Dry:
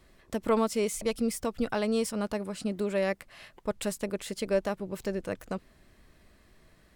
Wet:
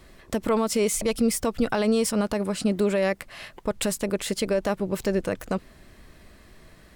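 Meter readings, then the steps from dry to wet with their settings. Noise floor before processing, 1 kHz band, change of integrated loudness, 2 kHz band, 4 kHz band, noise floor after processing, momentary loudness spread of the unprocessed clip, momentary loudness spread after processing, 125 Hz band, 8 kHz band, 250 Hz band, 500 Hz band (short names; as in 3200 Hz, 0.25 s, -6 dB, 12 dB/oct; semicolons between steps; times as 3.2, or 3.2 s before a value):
-61 dBFS, +4.5 dB, +6.0 dB, +5.5 dB, +7.5 dB, -52 dBFS, 10 LU, 9 LU, +7.0 dB, +9.0 dB, +6.5 dB, +5.0 dB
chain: limiter -22.5 dBFS, peak gain reduction 8 dB; gain +9 dB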